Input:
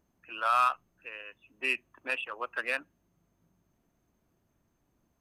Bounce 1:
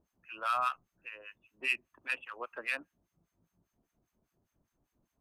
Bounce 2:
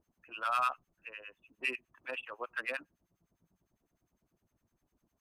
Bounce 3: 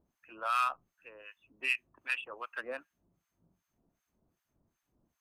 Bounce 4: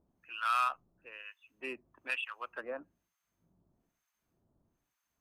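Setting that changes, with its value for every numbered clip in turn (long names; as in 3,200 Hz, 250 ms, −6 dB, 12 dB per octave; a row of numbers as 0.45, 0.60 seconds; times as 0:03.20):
two-band tremolo in antiphase, speed: 5, 9.9, 2.6, 1.1 Hertz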